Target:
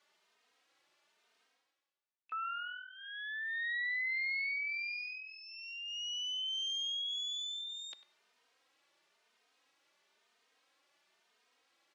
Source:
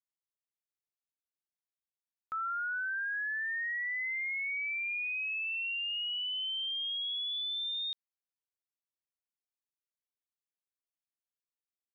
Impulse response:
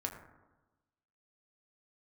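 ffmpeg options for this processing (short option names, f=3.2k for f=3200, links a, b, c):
-filter_complex "[0:a]areverse,acompressor=mode=upward:threshold=-39dB:ratio=2.5,areverse,highpass=360,lowpass=3.8k,asplit=2[a][b];[b]asetrate=88200,aresample=44100,atempo=0.5,volume=-15dB[c];[a][c]amix=inputs=2:normalize=0,asplit=2[d][e];[e]adelay=98,lowpass=f=2.2k:p=1,volume=-12.5dB,asplit=2[f][g];[g]adelay=98,lowpass=f=2.2k:p=1,volume=0.23,asplit=2[h][i];[i]adelay=98,lowpass=f=2.2k:p=1,volume=0.23[j];[d][f][h][j]amix=inputs=4:normalize=0,asplit=2[k][l];[l]adelay=3,afreqshift=1[m];[k][m]amix=inputs=2:normalize=1"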